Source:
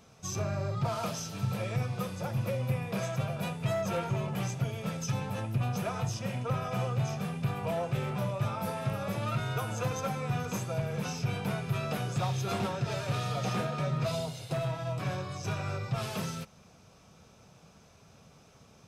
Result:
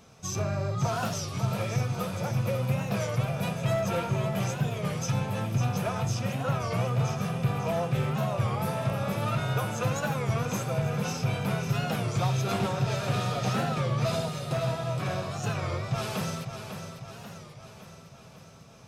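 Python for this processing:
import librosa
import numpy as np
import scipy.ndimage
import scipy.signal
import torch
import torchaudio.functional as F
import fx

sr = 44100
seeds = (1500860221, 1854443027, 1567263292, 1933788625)

y = fx.echo_feedback(x, sr, ms=549, feedback_pct=58, wet_db=-8.5)
y = fx.record_warp(y, sr, rpm=33.33, depth_cents=160.0)
y = F.gain(torch.from_numpy(y), 3.0).numpy()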